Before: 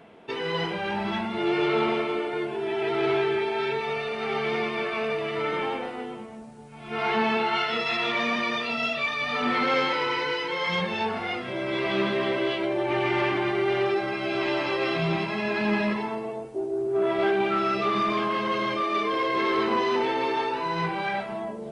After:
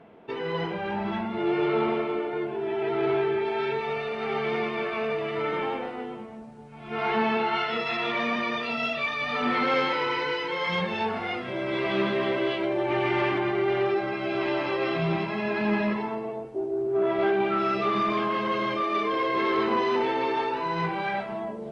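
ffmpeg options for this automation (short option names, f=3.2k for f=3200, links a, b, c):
-af "asetnsamples=n=441:p=0,asendcmd='3.45 lowpass f 2700;8.63 lowpass f 3900;13.38 lowpass f 2400;17.6 lowpass f 3500',lowpass=f=1.5k:p=1"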